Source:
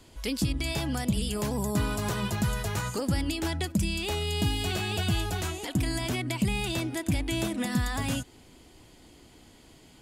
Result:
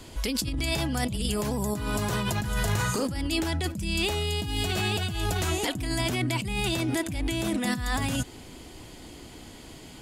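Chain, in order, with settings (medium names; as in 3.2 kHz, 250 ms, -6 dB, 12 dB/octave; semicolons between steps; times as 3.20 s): in parallel at +0.5 dB: peak limiter -26.5 dBFS, peak gain reduction 9.5 dB; on the sum: compressor with a negative ratio -28 dBFS, ratio -1; 2.40–3.06 s: flutter echo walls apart 6.5 m, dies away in 0.32 s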